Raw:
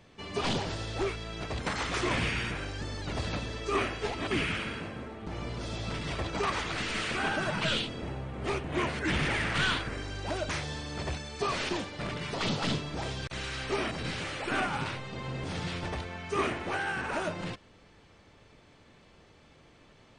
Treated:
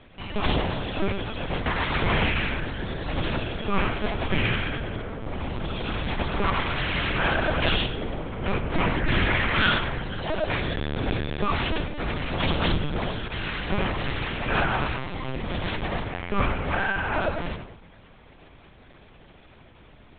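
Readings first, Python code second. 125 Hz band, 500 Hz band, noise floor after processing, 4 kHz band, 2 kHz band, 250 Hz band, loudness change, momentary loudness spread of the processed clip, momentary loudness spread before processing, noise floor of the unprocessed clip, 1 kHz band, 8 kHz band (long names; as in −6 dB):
+7.5 dB, +5.0 dB, −51 dBFS, +4.5 dB, +6.0 dB, +6.0 dB, +6.0 dB, 9 LU, 8 LU, −58 dBFS, +6.0 dB, below −35 dB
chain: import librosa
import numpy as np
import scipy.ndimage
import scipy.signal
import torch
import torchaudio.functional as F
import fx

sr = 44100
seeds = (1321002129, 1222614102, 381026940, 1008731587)

p1 = x + fx.echo_filtered(x, sr, ms=95, feedback_pct=48, hz=2000.0, wet_db=-6.5, dry=0)
p2 = fx.lpc_vocoder(p1, sr, seeds[0], excitation='pitch_kept', order=8)
y = F.gain(torch.from_numpy(p2), 6.5).numpy()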